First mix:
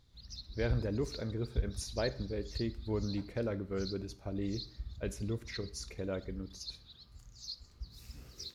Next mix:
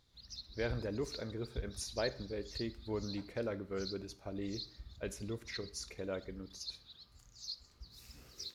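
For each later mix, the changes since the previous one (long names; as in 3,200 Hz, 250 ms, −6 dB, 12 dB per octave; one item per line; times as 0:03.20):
master: add low-shelf EQ 240 Hz −9 dB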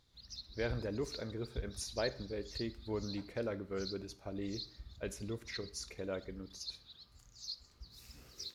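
nothing changed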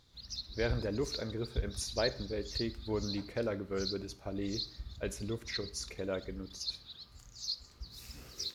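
speech +3.5 dB
background +6.5 dB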